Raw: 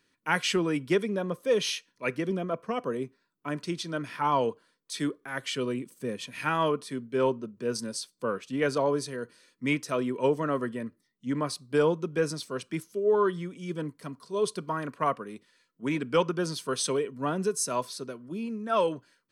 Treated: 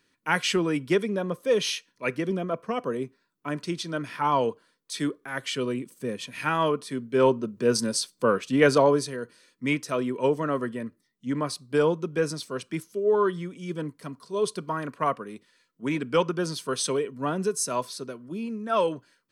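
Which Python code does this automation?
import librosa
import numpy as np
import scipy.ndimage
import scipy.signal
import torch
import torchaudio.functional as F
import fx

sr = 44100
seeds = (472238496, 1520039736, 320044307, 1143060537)

y = fx.gain(x, sr, db=fx.line((6.82, 2.0), (7.57, 8.0), (8.76, 8.0), (9.2, 1.5)))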